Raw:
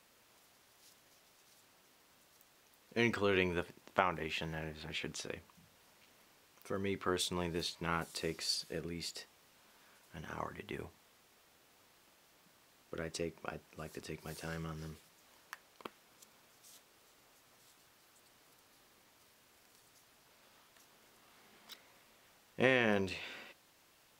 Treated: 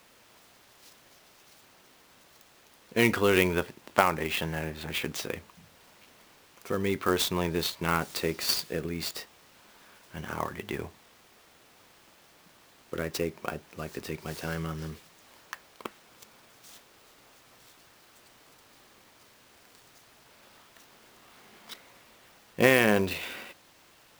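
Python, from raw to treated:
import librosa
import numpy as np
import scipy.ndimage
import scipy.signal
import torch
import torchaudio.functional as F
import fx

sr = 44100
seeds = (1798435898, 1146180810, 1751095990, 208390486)

y = fx.clock_jitter(x, sr, seeds[0], jitter_ms=0.021)
y = y * 10.0 ** (9.0 / 20.0)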